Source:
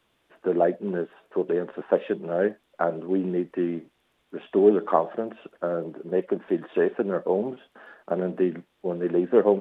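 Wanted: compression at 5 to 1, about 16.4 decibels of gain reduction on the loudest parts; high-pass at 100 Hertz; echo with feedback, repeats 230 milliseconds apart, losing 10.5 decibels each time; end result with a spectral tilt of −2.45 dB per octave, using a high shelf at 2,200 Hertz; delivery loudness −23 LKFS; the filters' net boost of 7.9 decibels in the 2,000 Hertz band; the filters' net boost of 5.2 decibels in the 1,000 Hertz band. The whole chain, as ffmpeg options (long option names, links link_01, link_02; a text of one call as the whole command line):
ffmpeg -i in.wav -af "highpass=100,equalizer=frequency=1000:width_type=o:gain=5,equalizer=frequency=2000:width_type=o:gain=6.5,highshelf=frequency=2200:gain=4,acompressor=threshold=-30dB:ratio=5,aecho=1:1:230|460|690:0.299|0.0896|0.0269,volume=12dB" out.wav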